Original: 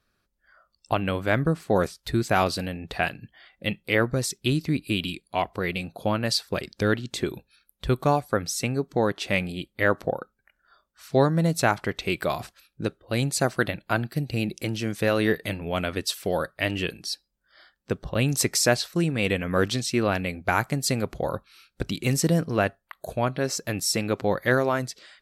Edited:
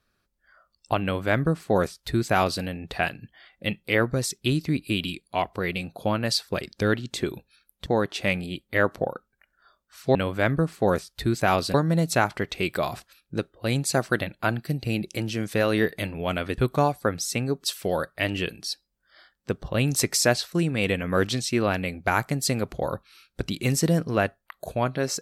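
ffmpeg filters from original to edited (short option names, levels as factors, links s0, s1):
-filter_complex "[0:a]asplit=6[s0][s1][s2][s3][s4][s5];[s0]atrim=end=7.862[s6];[s1]atrim=start=8.918:end=11.212[s7];[s2]atrim=start=1.028:end=2.622[s8];[s3]atrim=start=11.208:end=16.052[s9];[s4]atrim=start=7.858:end=8.922[s10];[s5]atrim=start=16.048[s11];[s6][s7]acrossfade=d=0.004:c1=hsin:c2=hsin[s12];[s12][s8]acrossfade=d=0.004:c1=hsin:c2=hsin[s13];[s13][s9]acrossfade=d=0.004:c1=hsin:c2=hsin[s14];[s14][s10]acrossfade=d=0.004:c1=hsin:c2=hsin[s15];[s15][s11]acrossfade=d=0.004:c1=hsin:c2=hsin"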